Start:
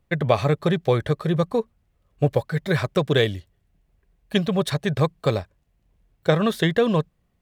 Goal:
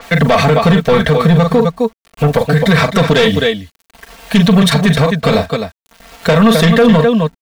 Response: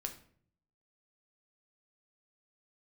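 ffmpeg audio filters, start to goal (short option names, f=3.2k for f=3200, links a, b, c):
-filter_complex "[0:a]acrossover=split=370|4600[a][b][c];[b]acompressor=mode=upward:threshold=-36dB:ratio=2.5[d];[a][d][c]amix=inputs=3:normalize=0,acrusher=bits=8:mix=0:aa=0.000001,aecho=1:1:40.82|259.5:0.282|0.282,asoftclip=type=tanh:threshold=-16.5dB,equalizer=f=390:w=3.8:g=-9,aecho=1:1:4.4:0.93,alimiter=level_in=17.5dB:limit=-1dB:release=50:level=0:latency=1,adynamicequalizer=threshold=0.0224:dfrequency=6300:dqfactor=0.7:tfrequency=6300:tqfactor=0.7:attack=5:release=100:ratio=0.375:range=2.5:mode=cutabove:tftype=highshelf,volume=-1dB"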